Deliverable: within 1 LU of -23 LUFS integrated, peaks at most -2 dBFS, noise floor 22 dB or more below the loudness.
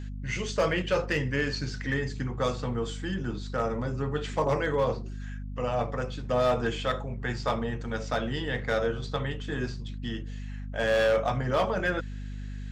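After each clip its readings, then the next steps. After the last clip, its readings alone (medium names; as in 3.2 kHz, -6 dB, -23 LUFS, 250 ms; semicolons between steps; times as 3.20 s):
clipped samples 0.5%; clipping level -18.5 dBFS; hum 50 Hz; highest harmonic 250 Hz; hum level -34 dBFS; loudness -29.5 LUFS; peak level -18.5 dBFS; loudness target -23.0 LUFS
-> clip repair -18.5 dBFS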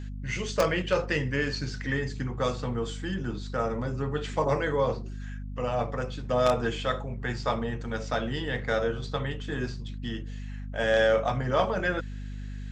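clipped samples 0.0%; hum 50 Hz; highest harmonic 250 Hz; hum level -34 dBFS
-> hum notches 50/100/150/200/250 Hz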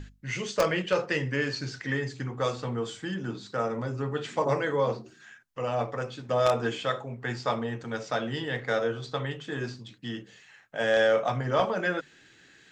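hum not found; loudness -29.5 LUFS; peak level -9.5 dBFS; loudness target -23.0 LUFS
-> trim +6.5 dB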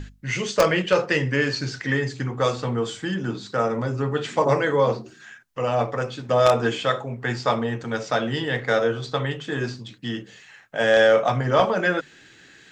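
loudness -23.0 LUFS; peak level -3.0 dBFS; noise floor -51 dBFS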